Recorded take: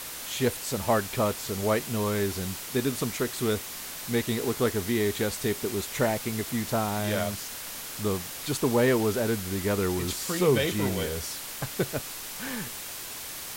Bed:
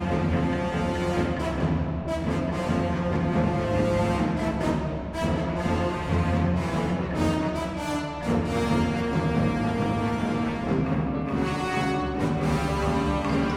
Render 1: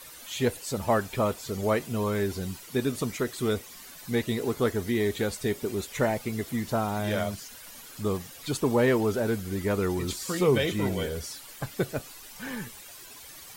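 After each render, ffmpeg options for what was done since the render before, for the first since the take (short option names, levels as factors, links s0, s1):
-af "afftdn=nr=12:nf=-39"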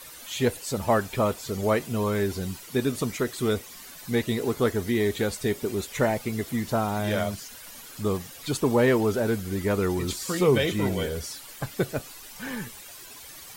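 -af "volume=1.26"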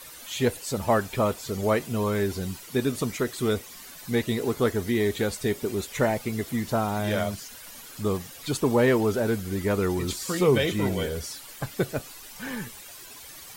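-af anull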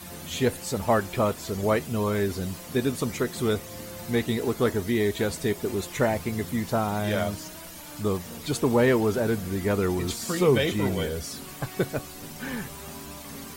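-filter_complex "[1:a]volume=0.133[s0];[0:a][s0]amix=inputs=2:normalize=0"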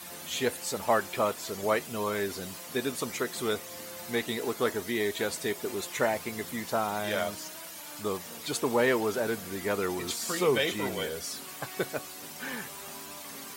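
-af "highpass=f=590:p=1"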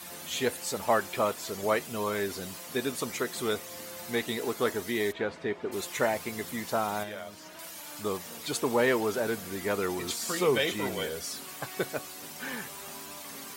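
-filter_complex "[0:a]asplit=3[s0][s1][s2];[s0]afade=t=out:st=5.11:d=0.02[s3];[s1]lowpass=2200,afade=t=in:st=5.11:d=0.02,afade=t=out:st=5.71:d=0.02[s4];[s2]afade=t=in:st=5.71:d=0.02[s5];[s3][s4][s5]amix=inputs=3:normalize=0,asettb=1/sr,asplit=3[s6][s7][s8];[s6]atrim=end=7.034[s9];[s7]atrim=start=7.03:end=7.59,asetpts=PTS-STARTPTS,afade=t=in:d=0.004:c=qsin,afade=t=out:st=0.556:d=0.004:c=qsin,acrossover=split=2600|6000[s10][s11][s12];[s10]acompressor=threshold=0.0112:ratio=4[s13];[s11]acompressor=threshold=0.002:ratio=4[s14];[s12]acompressor=threshold=0.00126:ratio=4[s15];[s13][s14][s15]amix=inputs=3:normalize=0[s16];[s8]atrim=start=7.586[s17];[s9][s16]acrossfade=d=0.004:c1=hsin:c2=qsin[s18];[s18][s17]acrossfade=d=0.004:c1=qsin:c2=hsin"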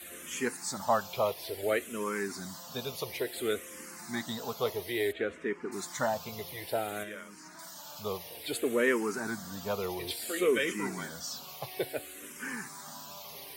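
-filter_complex "[0:a]asplit=2[s0][s1];[s1]afreqshift=-0.58[s2];[s0][s2]amix=inputs=2:normalize=1"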